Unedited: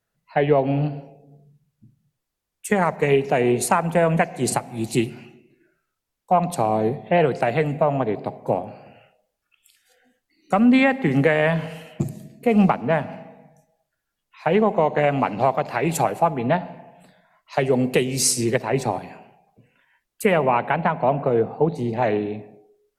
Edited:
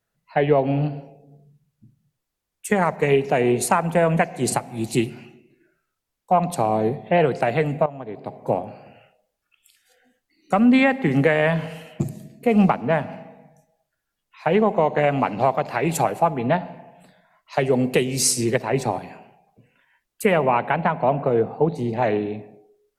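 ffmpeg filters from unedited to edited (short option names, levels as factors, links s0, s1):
-filter_complex "[0:a]asplit=2[s0][s1];[s0]atrim=end=7.86,asetpts=PTS-STARTPTS,afade=t=out:st=7.856:d=0.004:c=hsin:silence=0.188365[s2];[s1]atrim=start=7.86,asetpts=PTS-STARTPTS,afade=t=in:d=0.58:c=qua:silence=0.188365[s3];[s2][s3]concat=n=2:v=0:a=1"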